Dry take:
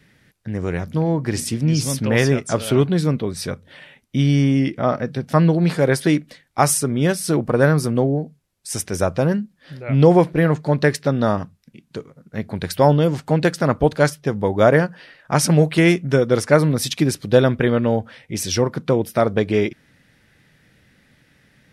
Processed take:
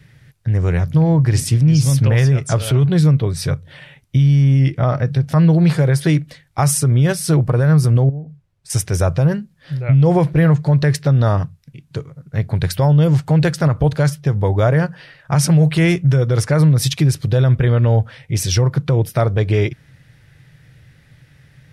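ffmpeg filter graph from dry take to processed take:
-filter_complex "[0:a]asettb=1/sr,asplit=3[s0][s1][s2];[s0]atrim=end=8.094[s3];[s1]atrim=start=8.09:end=8.7,asetpts=PTS-STARTPTS,afade=t=in:d=0.004:c=qsin,afade=t=out:st=0.606:d=0.004:c=qsin,lowpass=f=2000:p=1,acompressor=threshold=0.0224:ratio=8:attack=3.2:release=140:knee=1:detection=peak[s4];[s2]atrim=start=8.696[s5];[s3][s4]acrossfade=d=0.004:c1=hsin:c2=qsin[s6];[s6][s5]acrossfade=d=0.004:c1=qsin:c2=hsin,lowshelf=f=170:t=q:w=3:g=7,alimiter=limit=0.355:level=0:latency=1:release=72,volume=1.33"

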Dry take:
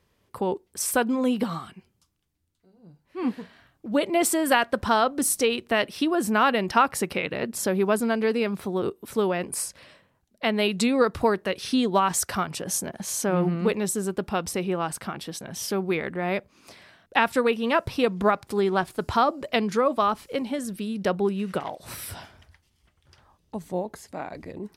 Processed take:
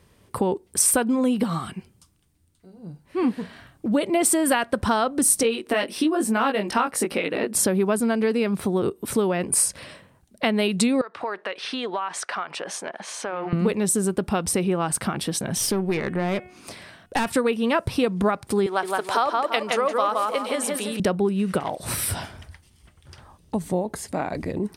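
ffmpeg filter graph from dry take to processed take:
-filter_complex "[0:a]asettb=1/sr,asplit=3[s0][s1][s2];[s0]atrim=end=5.434[s3];[s1]atrim=start=5.43:end=7.55,asetpts=PTS-STARTPTS,afade=t=in:d=0.004:c=qsin,afade=t=out:st=2.116:d=0.004:c=qsin,lowshelf=f=190:t=q:w=1.5:g=-10,acompressor=mode=upward:threshold=0.0178:ratio=2.5:attack=3.2:release=140:knee=2.83:detection=peak,flanger=delay=17.5:depth=3.1:speed=1.1[s4];[s2]atrim=start=7.546[s5];[s3][s4]acrossfade=d=0.004:c1=hsin:c2=qsin[s6];[s6][s5]acrossfade=d=0.004:c1=qsin:c2=hsin,asettb=1/sr,asplit=3[s7][s8][s9];[s7]atrim=end=11.014[s10];[s8]atrim=start=11.01:end=13.53,asetpts=PTS-STARTPTS,afade=t=in:d=0.004:c=qsin,afade=t=out:st=2.516:d=0.004:c=qsin,highpass=690,lowpass=2900,acompressor=threshold=0.0178:ratio=3:attack=3.2:release=140:knee=1:detection=peak[s11];[s9]atrim=start=13.526[s12];[s10][s11]acrossfade=d=0.004:c1=hsin:c2=qsin[s13];[s13][s12]acrossfade=d=0.004:c1=qsin:c2=hsin,asettb=1/sr,asplit=3[s14][s15][s16];[s14]atrim=end=15.584[s17];[s15]atrim=start=15.58:end=17.3,asetpts=PTS-STARTPTS,afade=t=in:d=0.004:c=qsin,afade=t=out:st=1.716:d=0.004:c=qsin,bandreject=f=364.4:t=h:w=4,bandreject=f=728.8:t=h:w=4,bandreject=f=1093.2:t=h:w=4,bandreject=f=1457.6:t=h:w=4,bandreject=f=1822:t=h:w=4,bandreject=f=2186.4:t=h:w=4,bandreject=f=2550.8:t=h:w=4,bandreject=f=2915.2:t=h:w=4,bandreject=f=3279.6:t=h:w=4,aeval=exprs='(tanh(11.2*val(0)+0.4)-tanh(0.4))/11.2':c=same[s18];[s16]atrim=start=17.296[s19];[s17][s18]acrossfade=d=0.004:c1=hsin:c2=qsin[s20];[s20][s19]acrossfade=d=0.004:c1=qsin:c2=hsin,asettb=1/sr,asplit=3[s21][s22][s23];[s21]atrim=end=18.664[s24];[s22]atrim=start=18.66:end=21,asetpts=PTS-STARTPTS,afade=t=in:d=0.004:c=qsin,afade=t=out:st=2.336:d=0.004:c=qsin,highpass=530,acompressor=mode=upward:threshold=0.0178:ratio=2.5:attack=3.2:release=140:knee=2.83:detection=peak,asplit=2[s25][s26];[s26]adelay=168,lowpass=f=3500:p=1,volume=0.708,asplit=2[s27][s28];[s28]adelay=168,lowpass=f=3500:p=1,volume=0.35,asplit=2[s29][s30];[s30]adelay=168,lowpass=f=3500:p=1,volume=0.35,asplit=2[s31][s32];[s32]adelay=168,lowpass=f=3500:p=1,volume=0.35,asplit=2[s33][s34];[s34]adelay=168,lowpass=f=3500:p=1,volume=0.35[s35];[s25][s27][s29][s31][s33][s35]amix=inputs=6:normalize=0,atrim=end_sample=103194[s36];[s23]atrim=start=20.996[s37];[s24][s36]acrossfade=d=0.004:c1=hsin:c2=qsin[s38];[s38][s37]acrossfade=d=0.004:c1=qsin:c2=hsin,equalizer=f=120:w=0.39:g=4,acompressor=threshold=0.0282:ratio=2.5,equalizer=f=8900:w=5.1:g=9.5,volume=2.66"

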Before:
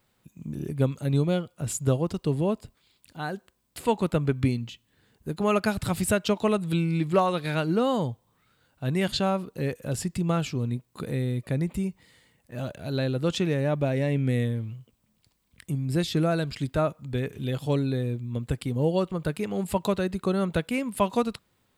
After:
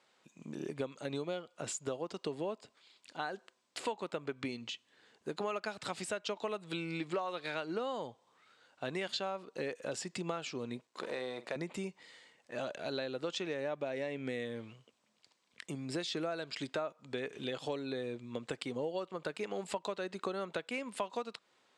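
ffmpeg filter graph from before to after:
-filter_complex "[0:a]asettb=1/sr,asplit=3[s0][s1][s2];[s0]atrim=end=10.874[s3];[s1]atrim=start=10.87:end=11.56,asetpts=PTS-STARTPTS,afade=t=in:d=0.004:c=qsin,afade=t=out:st=0.686:d=0.004:c=qsin,aeval=exprs='if(lt(val(0),0),0.251*val(0),val(0))':c=same,highpass=200,asplit=2[s4][s5];[s5]adelay=47,volume=0.2[s6];[s4][s6]amix=inputs=2:normalize=0,atrim=end_sample=30429[s7];[s2]atrim=start=11.556[s8];[s3][s7]acrossfade=d=0.004:c1=hsin:c2=qsin[s9];[s9][s8]acrossfade=d=0.004:c1=qsin:c2=hsin,highpass=420,acompressor=threshold=0.0141:ratio=6,lowpass=f=7400:w=0.5412,lowpass=f=7400:w=1.3066,volume=1.33"

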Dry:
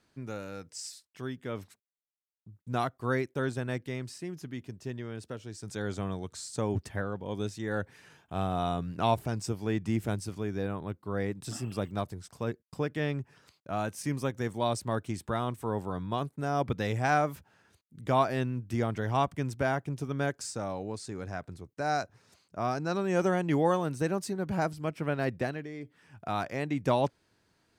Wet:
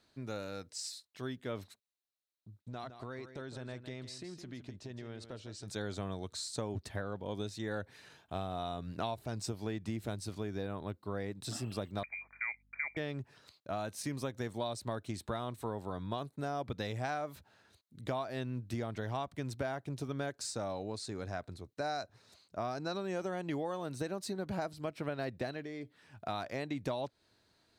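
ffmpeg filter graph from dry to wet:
-filter_complex "[0:a]asettb=1/sr,asplit=3[s0][s1][s2];[s0]atrim=end=2.614[s3];[s1]atrim=start=2.61:end=5.68,asetpts=PTS-STARTPTS,afade=t=in:d=0.004:c=qsin,afade=t=out:st=3.066:d=0.004:c=qsin,acompressor=threshold=0.0126:ratio=8:attack=3.2:release=140:knee=1:detection=peak,lowpass=7800,aecho=1:1:161:0.299,atrim=end_sample=135387[s4];[s2]atrim=start=5.676[s5];[s3][s4]acrossfade=d=0.004:c1=hsin:c2=qsin[s6];[s6][s5]acrossfade=d=0.004:c1=qsin:c2=hsin,asettb=1/sr,asplit=3[s7][s8][s9];[s7]atrim=end=12.034[s10];[s8]atrim=start=12.03:end=12.97,asetpts=PTS-STARTPTS,afade=t=in:d=0.004:c=qsin,afade=t=out:st=0.936:d=0.004:c=qsin,lowpass=f=2100:t=q:w=0.5098,lowpass=f=2100:t=q:w=0.6013,lowpass=f=2100:t=q:w=0.9,lowpass=f=2100:t=q:w=2.563,afreqshift=-2500,aeval=exprs='val(0)+0.000447*(sin(2*PI*50*n/s)+sin(2*PI*2*50*n/s)/2+sin(2*PI*3*50*n/s)/3+sin(2*PI*4*50*n/s)/4+sin(2*PI*5*50*n/s)/5)':c=same[s11];[s9]atrim=start=12.966[s12];[s10][s11]acrossfade=d=0.004:c1=hsin:c2=qsin[s13];[s13][s12]acrossfade=d=0.004:c1=qsin:c2=hsin,equalizer=f=160:t=o:w=0.33:g=-5,equalizer=f=630:t=o:w=0.33:g=4,equalizer=f=4000:t=o:w=0.33:g=10,acompressor=threshold=0.0282:ratio=12,volume=0.794"

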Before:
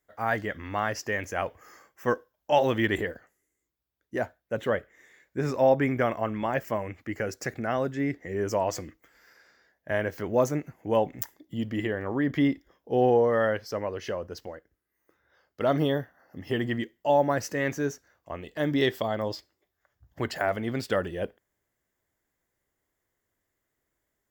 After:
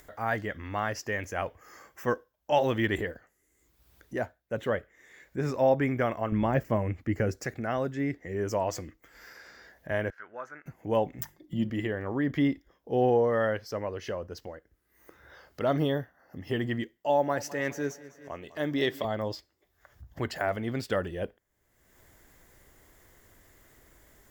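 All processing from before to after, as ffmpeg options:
-filter_complex "[0:a]asettb=1/sr,asplit=3[s0][s1][s2];[s0]atrim=end=6.324[s3];[s1]atrim=start=6.32:end=7.41,asetpts=PTS-STARTPTS,afade=t=in:d=0.004:c=qsin,afade=t=out:st=1.086:d=0.004:c=qsin,deesser=0.95,lowshelf=f=390:g=10[s4];[s2]atrim=start=7.406[s5];[s3][s4]acrossfade=d=0.004:c1=hsin:c2=qsin[s6];[s6][s5]acrossfade=d=0.004:c1=qsin:c2=hsin,asettb=1/sr,asplit=3[s7][s8][s9];[s7]atrim=end=10.104[s10];[s8]atrim=start=10.1:end=10.66,asetpts=PTS-STARTPTS,afade=t=in:d=0.004:c=qsin,afade=t=out:st=0.556:d=0.004:c=qsin,bandpass=f=1500:t=q:w=7,acontrast=71[s11];[s9]atrim=start=10.656[s12];[s10][s11]acrossfade=d=0.004:c1=hsin:c2=qsin[s13];[s13][s12]acrossfade=d=0.004:c1=qsin:c2=hsin,asettb=1/sr,asplit=3[s14][s15][s16];[s14]atrim=end=11.194[s17];[s15]atrim=start=11.19:end=11.7,asetpts=PTS-STARTPTS,afade=t=in:d=0.004:c=qsin,afade=t=out:st=0.506:d=0.004:c=qsin,bass=f=250:g=5,treble=f=4000:g=-3,bandreject=f=50:t=h:w=6,bandreject=f=100:t=h:w=6,bandreject=f=150:t=h:w=6,bandreject=f=200:t=h:w=6,bandreject=f=250:t=h:w=6,bandreject=f=300:t=h:w=6,bandreject=f=350:t=h:w=6,aecho=1:1:5.6:0.65,atrim=end_sample=22491[s18];[s16]atrim=start=11.696[s19];[s17][s18]acrossfade=d=0.004:c1=hsin:c2=qsin[s20];[s20][s19]acrossfade=d=0.004:c1=qsin:c2=hsin,asettb=1/sr,asplit=3[s21][s22][s23];[s21]atrim=end=16.974[s24];[s22]atrim=start=16.97:end=19.05,asetpts=PTS-STARTPTS,afade=t=in:d=0.004:c=qsin,afade=t=out:st=2.076:d=0.004:c=qsin,highpass=f=210:p=1,aecho=1:1:202|404|606|808:0.119|0.057|0.0274|0.0131,atrim=end_sample=91728[s25];[s23]atrim=start=19.046[s26];[s24][s25]acrossfade=d=0.004:c1=hsin:c2=qsin[s27];[s27][s26]acrossfade=d=0.004:c1=qsin:c2=hsin,lowshelf=f=64:g=9.5,acompressor=mode=upward:threshold=0.0158:ratio=2.5,volume=0.75"

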